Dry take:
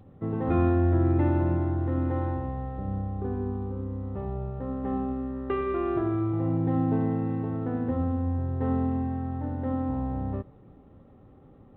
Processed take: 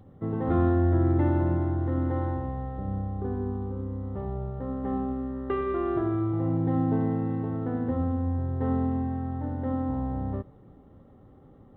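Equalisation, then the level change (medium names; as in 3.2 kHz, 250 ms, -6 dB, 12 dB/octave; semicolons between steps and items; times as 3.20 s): band-stop 2.5 kHz, Q 5.6; 0.0 dB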